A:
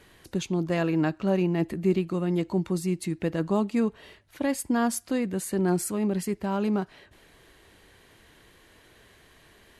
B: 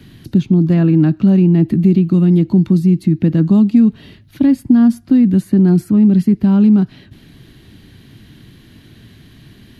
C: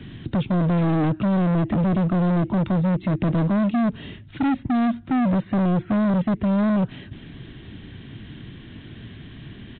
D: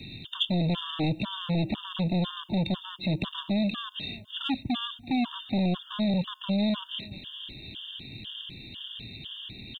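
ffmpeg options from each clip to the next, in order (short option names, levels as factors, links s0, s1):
-filter_complex "[0:a]equalizer=f=125:t=o:w=1:g=12,equalizer=f=250:t=o:w=1:g=10,equalizer=f=500:t=o:w=1:g=-11,equalizer=f=1000:t=o:w=1:g=-8,equalizer=f=2000:t=o:w=1:g=-5,equalizer=f=4000:t=o:w=1:g=3,equalizer=f=8000:t=o:w=1:g=-11,asplit=2[s0][s1];[s1]alimiter=limit=0.178:level=0:latency=1:release=34,volume=0.891[s2];[s0][s2]amix=inputs=2:normalize=0,acrossover=split=170|1900[s3][s4][s5];[s3]acompressor=threshold=0.0501:ratio=4[s6];[s4]acompressor=threshold=0.178:ratio=4[s7];[s5]acompressor=threshold=0.00316:ratio=4[s8];[s6][s7][s8]amix=inputs=3:normalize=0,volume=2"
-af "alimiter=limit=0.398:level=0:latency=1:release=114,aresample=8000,volume=11.2,asoftclip=hard,volume=0.0891,aresample=44100,volume=1.33"
-filter_complex "[0:a]asplit=2[s0][s1];[s1]adelay=334,lowpass=f=2000:p=1,volume=0.0708,asplit=2[s2][s3];[s3]adelay=334,lowpass=f=2000:p=1,volume=0.5,asplit=2[s4][s5];[s5]adelay=334,lowpass=f=2000:p=1,volume=0.5[s6];[s0][s2][s4][s6]amix=inputs=4:normalize=0,aexciter=amount=10.8:drive=8.2:freq=2800,afftfilt=real='re*gt(sin(2*PI*2*pts/sr)*(1-2*mod(floor(b*sr/1024/910),2)),0)':imag='im*gt(sin(2*PI*2*pts/sr)*(1-2*mod(floor(b*sr/1024/910),2)),0)':win_size=1024:overlap=0.75,volume=0.531"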